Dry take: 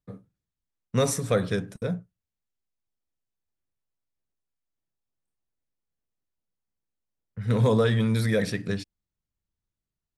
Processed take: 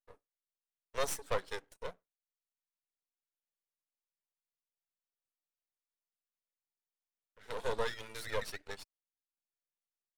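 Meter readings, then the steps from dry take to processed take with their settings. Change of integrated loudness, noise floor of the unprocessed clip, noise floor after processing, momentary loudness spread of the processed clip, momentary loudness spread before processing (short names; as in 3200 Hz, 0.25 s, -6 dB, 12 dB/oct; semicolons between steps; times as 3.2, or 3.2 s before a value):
-14.0 dB, under -85 dBFS, under -85 dBFS, 12 LU, 12 LU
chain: reverb removal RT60 0.59 s; HPF 440 Hz 24 dB/oct; half-wave rectifier; gain -4 dB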